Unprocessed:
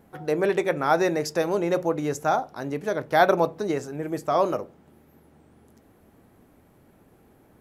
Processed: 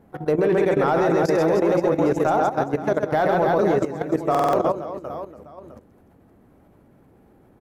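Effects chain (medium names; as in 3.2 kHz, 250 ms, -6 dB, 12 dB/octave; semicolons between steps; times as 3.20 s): reverse bouncing-ball echo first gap 130 ms, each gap 1.3×, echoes 5; in parallel at -10.5 dB: wavefolder -18 dBFS; on the sum: level held to a coarse grid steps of 12 dB; treble shelf 2 kHz -10.5 dB; buffer glitch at 4.30 s, samples 2048, times 4; trim +6.5 dB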